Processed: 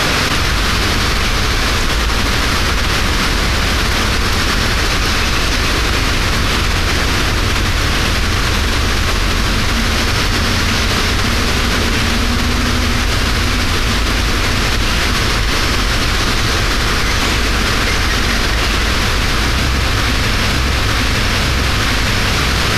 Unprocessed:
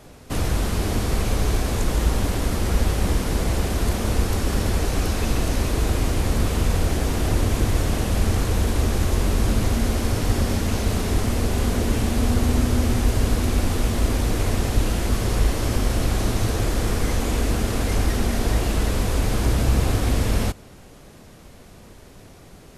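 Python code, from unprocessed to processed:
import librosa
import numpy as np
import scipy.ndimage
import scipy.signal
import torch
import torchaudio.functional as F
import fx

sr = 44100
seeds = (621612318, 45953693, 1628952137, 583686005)

y = fx.band_shelf(x, sr, hz=2500.0, db=12.5, octaves=2.7)
y = fx.echo_feedback(y, sr, ms=915, feedback_pct=43, wet_db=-10.0)
y = fx.env_flatten(y, sr, amount_pct=100)
y = y * librosa.db_to_amplitude(-1.0)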